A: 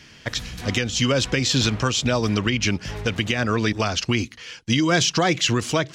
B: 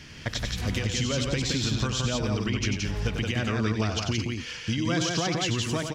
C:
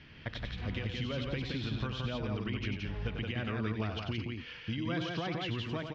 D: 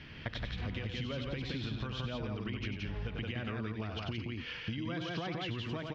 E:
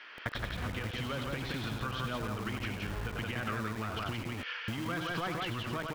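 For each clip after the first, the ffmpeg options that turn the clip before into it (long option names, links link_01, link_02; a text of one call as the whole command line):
ffmpeg -i in.wav -filter_complex "[0:a]lowshelf=frequency=170:gain=7.5,acompressor=threshold=-29dB:ratio=3,asplit=2[link_01][link_02];[link_02]aecho=0:1:93.29|172:0.447|0.708[link_03];[link_01][link_03]amix=inputs=2:normalize=0" out.wav
ffmpeg -i in.wav -af "lowpass=frequency=3600:width=0.5412,lowpass=frequency=3600:width=1.3066,volume=-8dB" out.wav
ffmpeg -i in.wav -af "acompressor=threshold=-39dB:ratio=6,volume=4.5dB" out.wav
ffmpeg -i in.wav -filter_complex "[0:a]equalizer=frequency=1300:width=1.6:gain=10,acrossover=split=420[link_01][link_02];[link_01]acrusher=bits=6:mix=0:aa=0.000001[link_03];[link_03][link_02]amix=inputs=2:normalize=0" out.wav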